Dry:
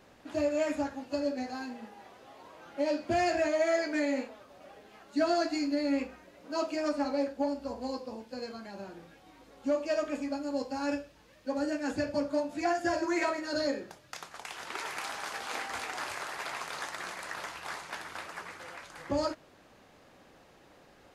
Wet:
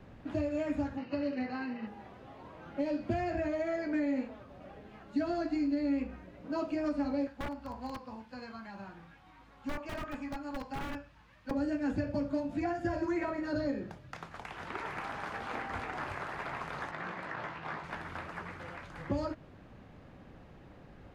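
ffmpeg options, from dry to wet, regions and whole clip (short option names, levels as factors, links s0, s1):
-filter_complex "[0:a]asettb=1/sr,asplit=3[s0][s1][s2];[s0]atrim=end=0.974[s3];[s1]atrim=start=0.97:end=1.87,asetpts=PTS-STARTPTS,afade=t=in:d=0.004:c=qsin,afade=t=out:st=0.896:d=0.004:c=qsin,acrusher=bits=4:mode=log:mix=0:aa=0.000001,asuperstop=centerf=3400:order=4:qfactor=5.3,highpass=140,equalizer=f=260:t=q:w=4:g=-4,equalizer=f=700:t=q:w=4:g=-4,equalizer=f=1200:t=q:w=4:g=3,equalizer=f=2000:t=q:w=4:g=7,equalizer=f=2900:t=q:w=4:g=8,equalizer=f=4400:t=q:w=4:g=4,lowpass=f=5300:w=0.5412,lowpass=f=5300:w=1.3066[s4];[s2]atrim=start=1.866[s5];[s3][s4]acrossfade=d=0.004:c1=hsin:c2=qsin[s6];[s6][s5]acrossfade=d=0.004:c1=qsin:c2=hsin,asettb=1/sr,asplit=3[s7][s8][s9];[s7]atrim=end=7.274[s10];[s8]atrim=start=7.27:end=11.51,asetpts=PTS-STARTPTS,afade=t=in:d=0.004:c=qsin,afade=t=out:st=4.236:d=0.004:c=qsin,lowshelf=f=690:t=q:w=1.5:g=-9.5,aeval=exprs='(mod(37.6*val(0)+1,2)-1)/37.6':c=same[s11];[s9]atrim=start=11.506[s12];[s10][s11]acrossfade=d=0.004:c1=hsin:c2=qsin[s13];[s13][s12]acrossfade=d=0.004:c1=qsin:c2=hsin,asettb=1/sr,asplit=3[s14][s15][s16];[s14]atrim=end=16.914[s17];[s15]atrim=start=16.91:end=17.84,asetpts=PTS-STARTPTS,afade=t=in:d=0.004:c=qsin,afade=t=out:st=0.926:d=0.004:c=qsin,highpass=120,adynamicsmooth=sensitivity=6:basefreq=4800,asplit=2[s18][s19];[s19]adelay=18,volume=0.501[s20];[s18][s20]amix=inputs=2:normalize=0,atrim=end_sample=41013[s21];[s16]atrim=start=17.836[s22];[s17][s21]acrossfade=d=0.004:c1=hsin:c2=qsin[s23];[s23][s22]acrossfade=d=0.004:c1=qsin:c2=hsin,bass=f=250:g=14,treble=f=4000:g=-13,acrossover=split=230|2200[s24][s25][s26];[s24]acompressor=threshold=0.0141:ratio=4[s27];[s25]acompressor=threshold=0.0224:ratio=4[s28];[s26]acompressor=threshold=0.00224:ratio=4[s29];[s27][s28][s29]amix=inputs=3:normalize=0"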